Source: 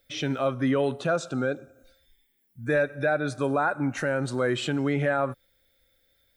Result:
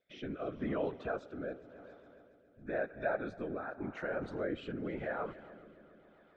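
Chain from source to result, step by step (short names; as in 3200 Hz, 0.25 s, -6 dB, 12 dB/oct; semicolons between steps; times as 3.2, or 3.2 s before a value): in parallel at -2 dB: compressor, threshold -34 dBFS, peak gain reduction 13.5 dB; on the sum: HPF 360 Hz 6 dB/oct; whisperiser; LPF 3300 Hz 12 dB/oct; high shelf 2100 Hz -8.5 dB; on a send: multi-head echo 0.138 s, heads second and third, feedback 62%, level -20 dB; on the sum: rotary speaker horn 0.9 Hz; gain -8.5 dB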